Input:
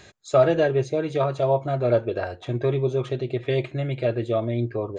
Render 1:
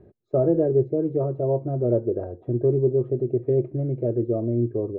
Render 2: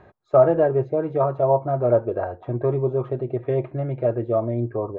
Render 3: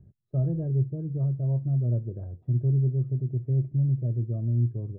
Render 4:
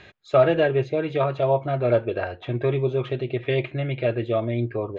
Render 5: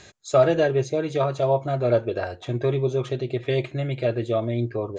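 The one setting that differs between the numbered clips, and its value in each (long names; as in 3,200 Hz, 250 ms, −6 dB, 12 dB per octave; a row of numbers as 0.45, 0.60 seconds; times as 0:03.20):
low-pass with resonance, frequency: 380, 1,000, 150, 2,800, 7,100 Hertz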